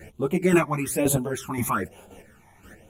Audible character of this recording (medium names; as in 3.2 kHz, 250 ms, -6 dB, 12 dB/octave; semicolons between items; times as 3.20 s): phasing stages 12, 1.1 Hz, lowest notch 470–1900 Hz; chopped level 1.9 Hz, depth 60%, duty 20%; a shimmering, thickened sound